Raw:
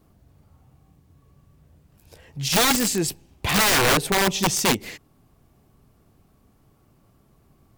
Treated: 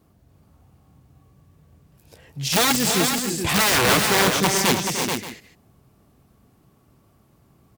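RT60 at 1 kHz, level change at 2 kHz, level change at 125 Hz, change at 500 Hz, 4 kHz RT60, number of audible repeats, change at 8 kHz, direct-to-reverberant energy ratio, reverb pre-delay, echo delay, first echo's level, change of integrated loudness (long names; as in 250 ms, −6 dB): no reverb audible, +2.0 dB, +1.5 dB, +2.0 dB, no reverb audible, 4, +2.0 dB, no reverb audible, no reverb audible, 299 ms, −10.0 dB, +1.5 dB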